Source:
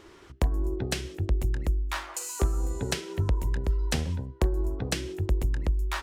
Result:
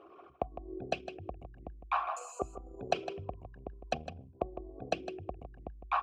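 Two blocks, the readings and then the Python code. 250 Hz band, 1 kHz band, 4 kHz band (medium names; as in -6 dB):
-10.5 dB, +4.0 dB, -11.5 dB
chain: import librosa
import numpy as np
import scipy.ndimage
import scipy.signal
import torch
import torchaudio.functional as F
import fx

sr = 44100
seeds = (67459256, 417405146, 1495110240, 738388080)

y = fx.envelope_sharpen(x, sr, power=2.0)
y = fx.vowel_filter(y, sr, vowel='a')
y = y + 10.0 ** (-11.0 / 20.0) * np.pad(y, (int(157 * sr / 1000.0), 0))[:len(y)]
y = y * librosa.db_to_amplitude(13.0)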